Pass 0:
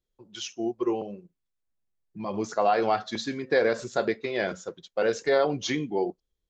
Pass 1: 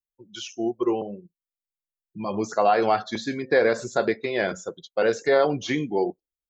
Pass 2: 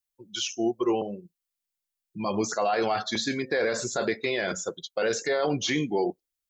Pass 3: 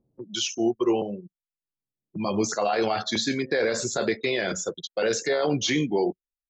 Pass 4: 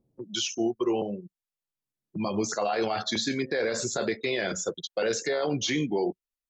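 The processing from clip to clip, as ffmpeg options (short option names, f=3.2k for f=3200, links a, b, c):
-filter_complex "[0:a]aemphasis=mode=production:type=50fm,afftdn=nr=23:nf=-48,acrossover=split=2700[a][b];[b]acompressor=threshold=-42dB:ratio=4:attack=1:release=60[c];[a][c]amix=inputs=2:normalize=0,volume=3.5dB"
-af "highshelf=f=2.1k:g=8,alimiter=limit=-17dB:level=0:latency=1:release=15"
-filter_complex "[0:a]anlmdn=0.00631,acrossover=split=110|620|1900[a][b][c][d];[b]acompressor=mode=upward:threshold=-33dB:ratio=2.5[e];[c]tremolo=f=76:d=0.947[f];[a][e][f][d]amix=inputs=4:normalize=0,volume=3dB"
-af "alimiter=limit=-17.5dB:level=0:latency=1:release=175" -ar 44100 -c:a libmp3lame -b:a 112k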